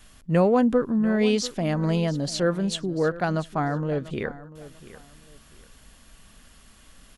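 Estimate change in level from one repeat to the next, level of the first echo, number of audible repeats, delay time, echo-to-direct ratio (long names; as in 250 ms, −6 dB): −11.5 dB, −17.0 dB, 2, 692 ms, −16.5 dB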